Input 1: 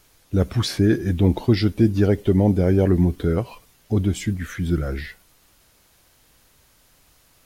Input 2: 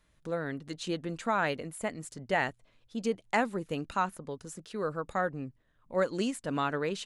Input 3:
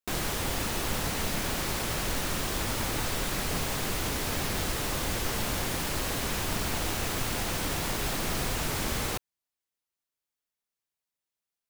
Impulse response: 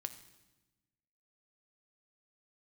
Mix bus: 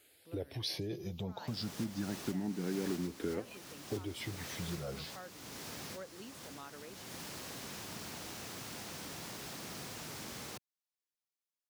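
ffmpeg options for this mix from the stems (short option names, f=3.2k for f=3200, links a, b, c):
-filter_complex "[0:a]asplit=2[a][b];[b]afreqshift=0.27[c];[a][c]amix=inputs=2:normalize=1,volume=-5dB[d];[1:a]volume=-19.5dB,asplit=2[e][f];[2:a]acrossover=split=220[g][h];[h]acompressor=threshold=-39dB:ratio=2[i];[g][i]amix=inputs=2:normalize=0,adelay=1400,volume=-9.5dB[j];[f]apad=whole_len=577491[k];[j][k]sidechaincompress=threshold=-54dB:ratio=8:attack=16:release=420[l];[d][e]amix=inputs=2:normalize=0,acompressor=threshold=-32dB:ratio=8,volume=0dB[m];[l][m]amix=inputs=2:normalize=0,highpass=160,equalizer=f=5.4k:w=1.4:g=4.5"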